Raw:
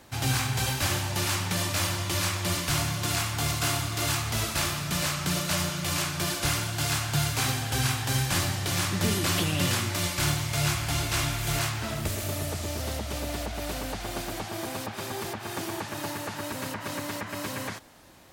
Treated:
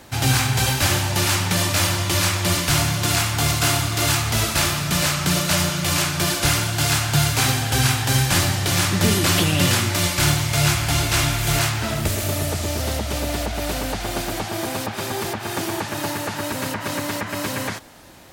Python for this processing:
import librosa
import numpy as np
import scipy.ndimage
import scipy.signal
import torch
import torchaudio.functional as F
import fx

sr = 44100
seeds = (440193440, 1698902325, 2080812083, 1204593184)

y = fx.notch(x, sr, hz=1100.0, q=23.0)
y = y * 10.0 ** (8.0 / 20.0)